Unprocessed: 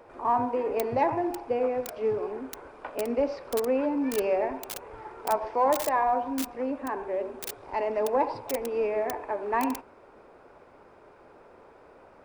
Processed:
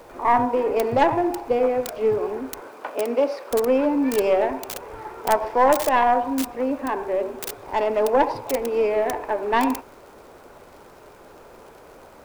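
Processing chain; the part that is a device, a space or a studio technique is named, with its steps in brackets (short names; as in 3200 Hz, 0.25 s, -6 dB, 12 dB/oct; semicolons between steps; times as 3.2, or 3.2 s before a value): record under a worn stylus (tracing distortion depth 0.43 ms; crackle; pink noise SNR 34 dB); 2.6–3.5 HPF 190 Hz -> 390 Hz 12 dB/oct; gain +6.5 dB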